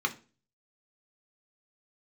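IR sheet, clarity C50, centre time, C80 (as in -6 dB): 16.5 dB, 7 ms, 22.5 dB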